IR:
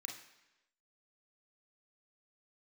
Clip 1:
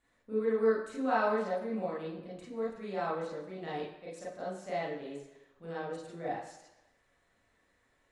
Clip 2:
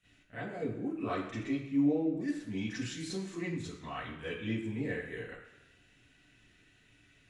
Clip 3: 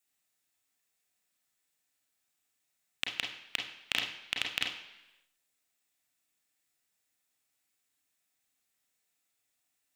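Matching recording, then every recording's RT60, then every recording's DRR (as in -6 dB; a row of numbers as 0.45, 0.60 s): 3; 1.0, 1.0, 1.0 s; -7.0, -13.5, 1.0 dB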